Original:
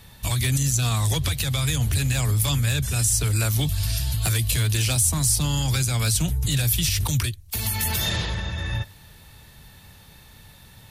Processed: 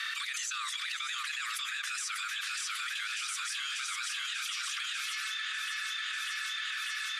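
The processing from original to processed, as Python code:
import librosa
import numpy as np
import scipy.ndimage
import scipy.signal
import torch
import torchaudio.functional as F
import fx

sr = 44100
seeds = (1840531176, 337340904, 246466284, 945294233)

y = fx.doppler_pass(x, sr, speed_mps=6, closest_m=3.7, pass_at_s=2.8)
y = scipy.signal.sosfilt(scipy.signal.butter(16, 1200.0, 'highpass', fs=sr, output='sos'), y)
y = fx.high_shelf(y, sr, hz=3000.0, db=-10.0)
y = fx.notch(y, sr, hz=4200.0, q=29.0)
y = fx.stretch_vocoder(y, sr, factor=0.66)
y = fx.air_absorb(y, sr, metres=90.0)
y = fx.echo_feedback(y, sr, ms=594, feedback_pct=54, wet_db=-6.5)
y = fx.env_flatten(y, sr, amount_pct=100)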